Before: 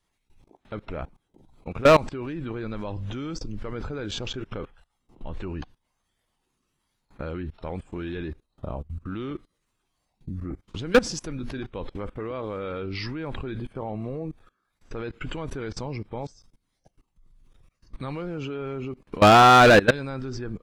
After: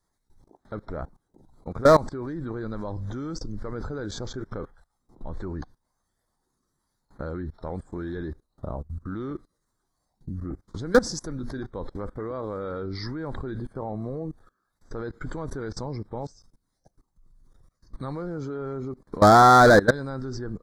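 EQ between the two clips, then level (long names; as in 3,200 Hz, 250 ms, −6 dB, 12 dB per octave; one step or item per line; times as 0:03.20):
Butterworth band-reject 2,700 Hz, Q 1.2
0.0 dB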